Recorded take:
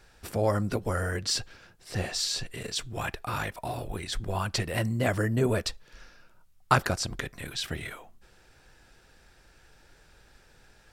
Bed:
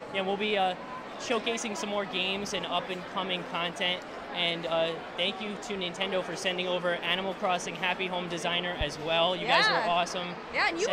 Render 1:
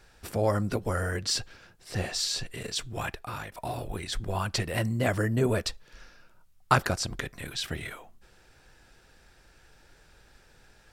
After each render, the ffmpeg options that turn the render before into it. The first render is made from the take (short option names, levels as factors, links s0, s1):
-filter_complex "[0:a]asplit=2[s0][s1];[s0]atrim=end=3.52,asetpts=PTS-STARTPTS,afade=t=out:st=2.99:d=0.53:silence=0.334965[s2];[s1]atrim=start=3.52,asetpts=PTS-STARTPTS,afade=t=in:d=0.004:c=hsin:silence=0.334965[s3];[s2][s3]concat=n=2:v=0:a=1"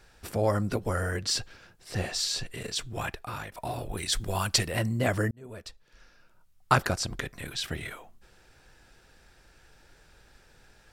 -filter_complex "[0:a]asettb=1/sr,asplit=3[s0][s1][s2];[s0]atrim=end=3.974[s3];[s1]atrim=start=3.97:end=4.68,asetpts=PTS-STARTPTS,afade=t=in:d=0.004:c=qsin,afade=t=out:st=0.706:d=0.004:c=qsin,highshelf=f=3500:g=11[s4];[s2]atrim=start=4.676[s5];[s3][s4]acrossfade=d=0.004:c1=hsin:c2=qsin[s6];[s6][s5]acrossfade=d=0.004:c1=qsin:c2=hsin,asplit=2[s7][s8];[s7]atrim=end=5.31,asetpts=PTS-STARTPTS,afade=t=out:st=5.306:d=0.004:c=hsin[s9];[s8]atrim=start=5.31,asetpts=PTS-STARTPTS,afade=t=in:d=1.45[s10];[s9][s10]concat=n=2:v=0:a=1"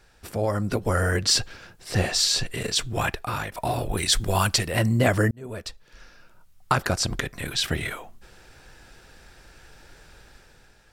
-af "alimiter=limit=0.15:level=0:latency=1:release=396,dynaudnorm=f=160:g=9:m=2.51"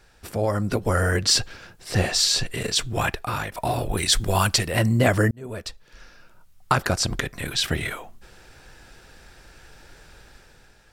-af "volume=1.19"